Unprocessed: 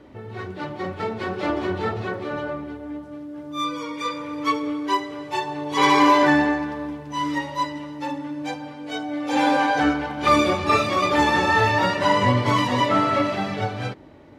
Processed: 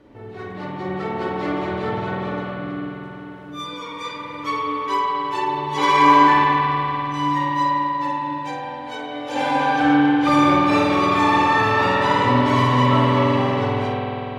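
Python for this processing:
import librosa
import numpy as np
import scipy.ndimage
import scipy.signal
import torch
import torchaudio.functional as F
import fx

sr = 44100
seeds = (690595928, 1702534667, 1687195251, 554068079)

y = fx.room_flutter(x, sr, wall_m=8.3, rt60_s=0.31)
y = fx.rev_spring(y, sr, rt60_s=4.0, pass_ms=(48,), chirp_ms=40, drr_db=-3.5)
y = F.gain(torch.from_numpy(y), -4.0).numpy()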